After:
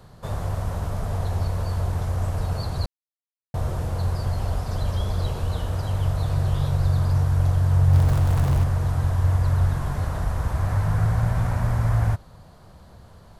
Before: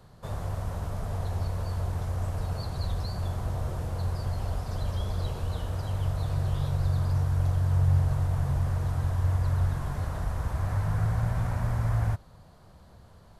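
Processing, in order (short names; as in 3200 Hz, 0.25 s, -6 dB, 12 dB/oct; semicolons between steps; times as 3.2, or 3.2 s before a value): 2.86–3.54 mute; 7.93–8.64 zero-crossing step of -32 dBFS; gain +5.5 dB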